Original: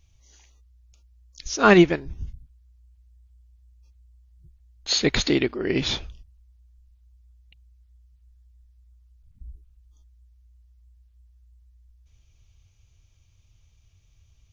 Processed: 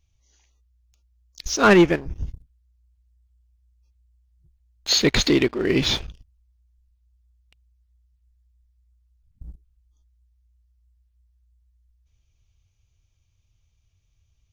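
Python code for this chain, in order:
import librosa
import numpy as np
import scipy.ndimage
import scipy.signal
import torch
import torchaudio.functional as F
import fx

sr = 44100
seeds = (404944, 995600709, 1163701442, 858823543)

y = fx.peak_eq(x, sr, hz=3900.0, db=-11.5, octaves=0.34, at=(1.64, 2.16))
y = fx.leveller(y, sr, passes=2)
y = y * librosa.db_to_amplitude(-3.5)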